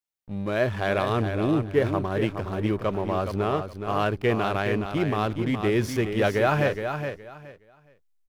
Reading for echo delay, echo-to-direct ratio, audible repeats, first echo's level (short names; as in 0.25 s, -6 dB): 0.418 s, -7.5 dB, 3, -7.5 dB